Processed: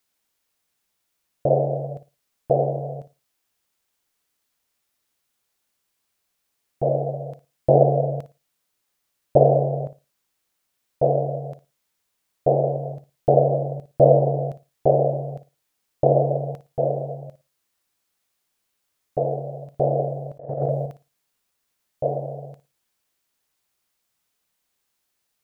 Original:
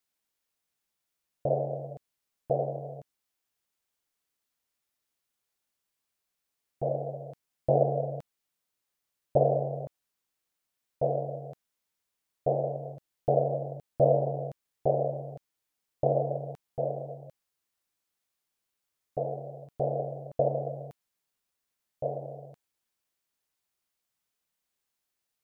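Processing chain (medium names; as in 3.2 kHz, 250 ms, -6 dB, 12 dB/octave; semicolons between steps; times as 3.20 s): flutter echo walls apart 9.8 m, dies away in 0.25 s; dynamic bell 340 Hz, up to +4 dB, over -43 dBFS, Q 3.1; 20.38–20.86 s: compressor with a negative ratio -33 dBFS, ratio -0.5; trim +8 dB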